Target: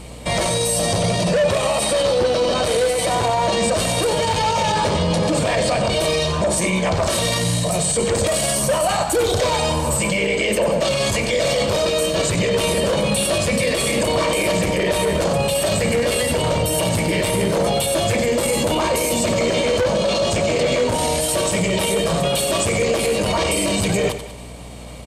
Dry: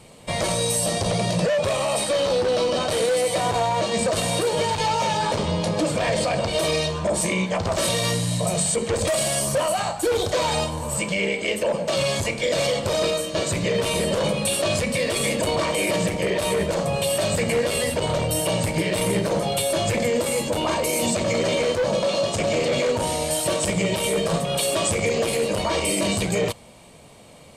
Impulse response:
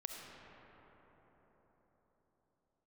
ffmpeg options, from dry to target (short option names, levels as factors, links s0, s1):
-filter_complex "[0:a]alimiter=limit=0.1:level=0:latency=1:release=12,asplit=2[s0][s1];[s1]aecho=0:1:105|210|315|420|525:0.266|0.125|0.0588|0.0276|0.013[s2];[s0][s2]amix=inputs=2:normalize=0,aeval=exprs='val(0)+0.00562*(sin(2*PI*60*n/s)+sin(2*PI*2*60*n/s)/2+sin(2*PI*3*60*n/s)/3+sin(2*PI*4*60*n/s)/4+sin(2*PI*5*60*n/s)/5)':c=same,atempo=1.1,volume=2.66"